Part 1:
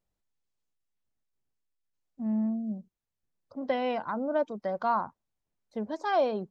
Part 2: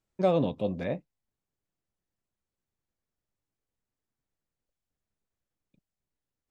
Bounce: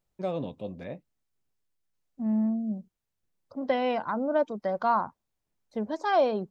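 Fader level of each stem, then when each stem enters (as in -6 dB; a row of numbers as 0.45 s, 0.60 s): +2.5 dB, -7.0 dB; 0.00 s, 0.00 s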